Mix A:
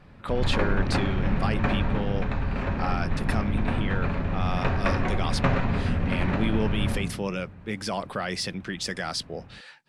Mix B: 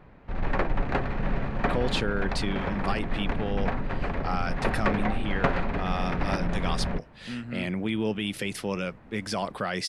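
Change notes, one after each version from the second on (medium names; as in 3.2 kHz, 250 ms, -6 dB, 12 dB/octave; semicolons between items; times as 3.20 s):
speech: entry +1.45 s; reverb: off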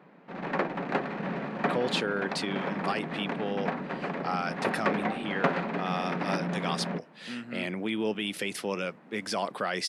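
speech: add high-pass 240 Hz 12 dB/octave; background: add elliptic high-pass 160 Hz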